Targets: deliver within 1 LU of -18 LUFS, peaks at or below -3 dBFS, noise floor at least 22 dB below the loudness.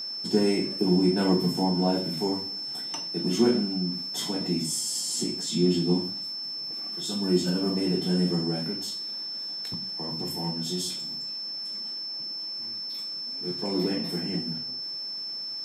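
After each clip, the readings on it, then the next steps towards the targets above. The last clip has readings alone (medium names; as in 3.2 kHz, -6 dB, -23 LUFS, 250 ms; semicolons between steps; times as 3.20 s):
steady tone 5.3 kHz; tone level -32 dBFS; loudness -27.5 LUFS; peak level -10.0 dBFS; loudness target -18.0 LUFS
-> band-stop 5.3 kHz, Q 30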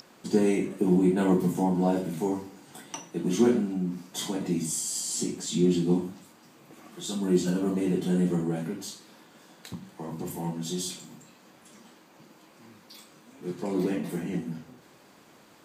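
steady tone not found; loudness -28.0 LUFS; peak level -10.5 dBFS; loudness target -18.0 LUFS
-> trim +10 dB; peak limiter -3 dBFS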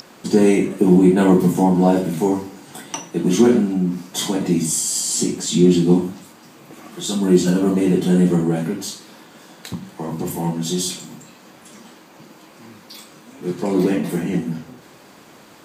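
loudness -18.0 LUFS; peak level -3.0 dBFS; noise floor -46 dBFS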